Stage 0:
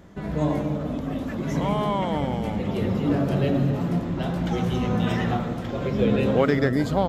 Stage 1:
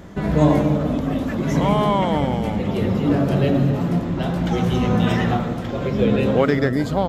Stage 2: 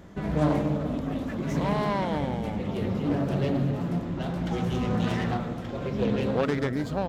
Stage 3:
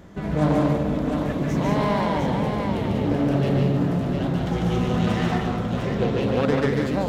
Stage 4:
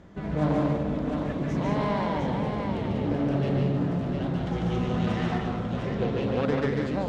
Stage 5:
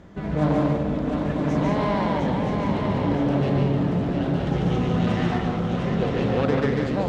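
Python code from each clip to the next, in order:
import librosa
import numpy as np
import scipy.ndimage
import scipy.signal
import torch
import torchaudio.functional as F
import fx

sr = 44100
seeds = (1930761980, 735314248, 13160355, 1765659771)

y1 = fx.rider(x, sr, range_db=10, speed_s=2.0)
y1 = y1 * librosa.db_to_amplitude(4.0)
y2 = fx.self_delay(y1, sr, depth_ms=0.29)
y2 = y2 * librosa.db_to_amplitude(-8.0)
y3 = fx.echo_multitap(y2, sr, ms=(146, 195, 706), db=(-3.0, -5.5, -5.0))
y3 = y3 * librosa.db_to_amplitude(2.0)
y4 = fx.air_absorb(y3, sr, metres=65.0)
y4 = y4 * librosa.db_to_amplitude(-4.5)
y5 = y4 + 10.0 ** (-6.5 / 20.0) * np.pad(y4, (int(971 * sr / 1000.0), 0))[:len(y4)]
y5 = y5 * librosa.db_to_amplitude(3.5)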